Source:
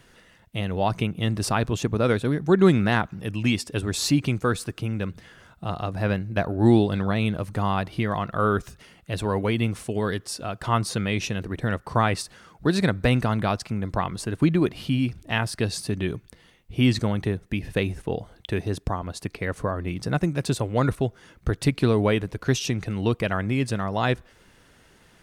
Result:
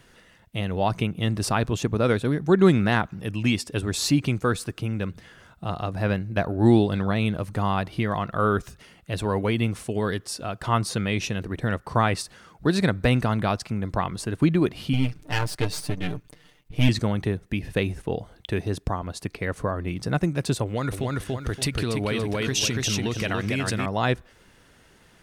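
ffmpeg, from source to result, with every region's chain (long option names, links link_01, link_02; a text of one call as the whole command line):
ffmpeg -i in.wav -filter_complex "[0:a]asettb=1/sr,asplit=3[link_01][link_02][link_03];[link_01]atrim=end=14.934[link_04];[link_02]atrim=start=14.93:end=16.89,asetpts=PTS-STARTPTS,afade=type=in:duration=0.004:curve=qsin,afade=type=out:start_time=1.956:duration=0.004:curve=qsin,aeval=exprs='if(lt(val(0),0),0.251*val(0),val(0))':channel_layout=same,aecho=1:1:6.7:0.89,atrim=end_sample=86436[link_05];[link_03]atrim=start=16.886[link_06];[link_04][link_05]acrossfade=duration=0.004:curve1=hsin:curve2=qsin[link_07];[link_07][link_06]acrossfade=duration=0.004:curve1=qsin:curve2=hsin,asettb=1/sr,asplit=3[link_08][link_09][link_10];[link_08]atrim=end=20.644[link_11];[link_09]atrim=start=20.64:end=23.86,asetpts=PTS-STARTPTS,afade=type=in:duration=0.004:curve=qsin,afade=type=out:start_time=3.216:duration=0.004:curve=qsin,aecho=1:1:285|570|855:0.668|0.16|0.0385,atrim=end_sample=142002,acompressor=threshold=-22dB:ratio=6:attack=3.2:release=140:knee=1:detection=peak,adynamicequalizer=threshold=0.00501:dfrequency=1600:dqfactor=0.7:tfrequency=1600:tqfactor=0.7:attack=5:release=100:ratio=0.375:range=3.5:mode=boostabove:tftype=highshelf[link_12];[link_10]atrim=start=23.856[link_13];[link_11][link_12]acrossfade=duration=0.004:curve1=hsin:curve2=qsin[link_14];[link_14][link_13]acrossfade=duration=0.004:curve1=qsin:curve2=hsin" out.wav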